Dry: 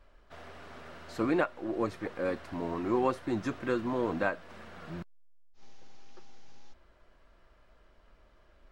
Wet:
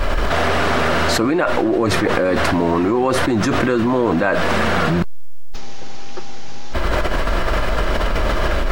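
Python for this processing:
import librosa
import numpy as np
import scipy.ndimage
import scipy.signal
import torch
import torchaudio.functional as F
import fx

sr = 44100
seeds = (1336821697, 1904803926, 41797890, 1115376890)

y = fx.env_flatten(x, sr, amount_pct=100)
y = y * librosa.db_to_amplitude(8.5)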